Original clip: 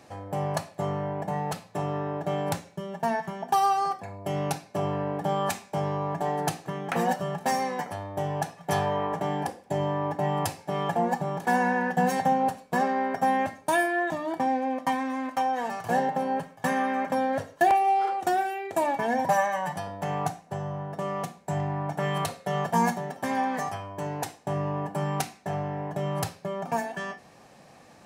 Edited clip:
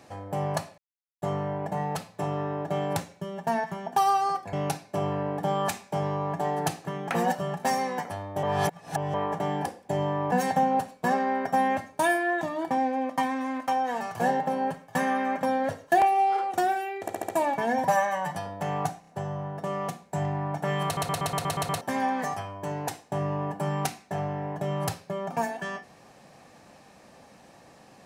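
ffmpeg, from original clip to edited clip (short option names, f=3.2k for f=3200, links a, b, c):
-filter_complex "[0:a]asplit=20[a][b][c][d][e][f][g][h][i][j][k][l][m][n][o][p][q][r][s][t];[a]atrim=end=0.78,asetpts=PTS-STARTPTS,afade=t=out:st=0.776:d=0.004:c=hsin,apad=pad_dur=0.44[u];[b]atrim=start=0.78:end=4.092,asetpts=PTS-STARTPTS,afade=t=in:d=0.004:c=hsin[v];[c]atrim=start=4.338:end=8.242[w];[d]atrim=start=8.238:end=8.952,asetpts=PTS-STARTPTS,areverse[x];[e]atrim=start=8.948:end=10.132[y];[f]atrim=start=12.008:end=18.772[z];[g]atrim=start=18.698:end=18.772[aa];[h]atrim=start=18.698:end=18.772[ab];[i]atrim=start=18.698:end=18.772[ac];[j]atrim=start=18.698:end=20.452[ad];[k]atrim=start=20.418:end=20.452[ae];[l]atrim=start=20.418:end=22.322[af];[m]atrim=start=22.198:end=22.322[ag];[n]atrim=start=22.198:end=22.322[ah];[o]atrim=start=22.198:end=22.322[ai];[p]atrim=start=22.198:end=22.322[aj];[q]atrim=start=22.198:end=22.322[ak];[r]atrim=start=22.198:end=22.322[al];[s]atrim=start=22.198:end=22.322[am];[t]atrim=start=23.158[an];[u][v]concat=n=2:v=0:a=1[ao];[ao][w]acrossfade=d=0.004:c1=hsin:c2=hsin[ap];[ap][x]acrossfade=d=0.004:c1=hsin:c2=hsin[aq];[aq][y]acrossfade=d=0.004:c1=hsin:c2=hsin[ar];[ar][z]acrossfade=d=0.004:c1=hsin:c2=hsin[as];[as][aa]acrossfade=d=0.004:c1=hsin:c2=hsin[at];[at][ab]acrossfade=d=0.004:c1=hsin:c2=hsin[au];[au][ac]acrossfade=d=0.004:c1=hsin:c2=hsin[av];[av][ad]acrossfade=d=0.004:c1=hsin:c2=hsin[aw];[aw][ae]acrossfade=d=0.004:c1=hsin:c2=hsin[ax];[ax][af]acrossfade=d=0.004:c1=hsin:c2=hsin[ay];[ay][ag]acrossfade=d=0.004:c1=hsin:c2=hsin[az];[az][ah]acrossfade=d=0.004:c1=hsin:c2=hsin[ba];[ba][ai]acrossfade=d=0.004:c1=hsin:c2=hsin[bb];[bb][aj]acrossfade=d=0.004:c1=hsin:c2=hsin[bc];[bc][ak]acrossfade=d=0.004:c1=hsin:c2=hsin[bd];[bd][al]acrossfade=d=0.004:c1=hsin:c2=hsin[be];[be][am]acrossfade=d=0.004:c1=hsin:c2=hsin[bf];[bf][an]acrossfade=d=0.004:c1=hsin:c2=hsin"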